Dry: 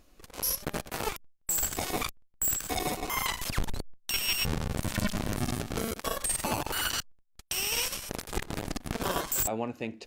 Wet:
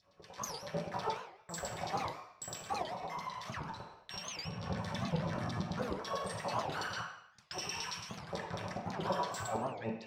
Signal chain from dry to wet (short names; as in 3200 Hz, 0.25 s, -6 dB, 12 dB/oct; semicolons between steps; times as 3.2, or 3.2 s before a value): LFO notch sine 6.9 Hz 390–5700 Hz; resonant low shelf 180 Hz +14 dB, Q 3; LFO band-pass saw down 9.1 Hz 420–4100 Hz; limiter -35 dBFS, peak gain reduction 10.5 dB; 7.58–8.24 bell 540 Hz -13.5 dB 0.83 oct; reverb RT60 0.70 s, pre-delay 3 ms, DRR -4.5 dB; 2.83–4.63 compressor 2:1, threshold -41 dBFS, peak gain reduction 7 dB; record warp 78 rpm, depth 250 cents; gain -2 dB